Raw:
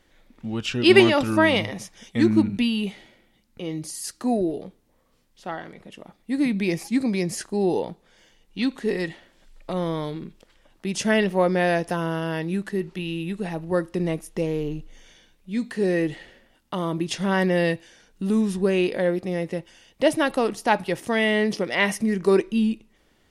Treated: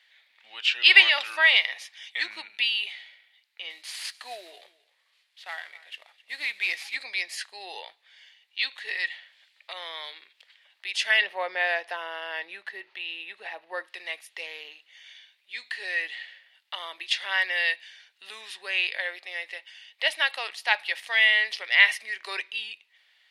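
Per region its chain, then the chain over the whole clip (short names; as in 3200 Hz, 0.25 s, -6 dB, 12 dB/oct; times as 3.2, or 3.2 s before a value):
3.7–6.95 CVSD 64 kbps + echo 0.26 s -19.5 dB
11.21–13.87 tilt shelf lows +8 dB, about 1400 Hz + notch 7600 Hz, Q 6.1
whole clip: HPF 720 Hz 24 dB/oct; band shelf 2800 Hz +14 dB; gain -7.5 dB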